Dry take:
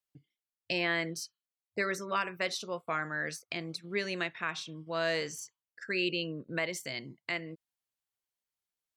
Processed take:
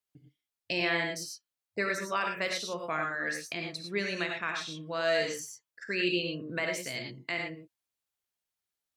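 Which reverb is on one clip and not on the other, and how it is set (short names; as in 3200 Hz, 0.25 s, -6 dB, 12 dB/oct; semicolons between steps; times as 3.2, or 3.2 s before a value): non-linear reverb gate 0.13 s rising, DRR 2 dB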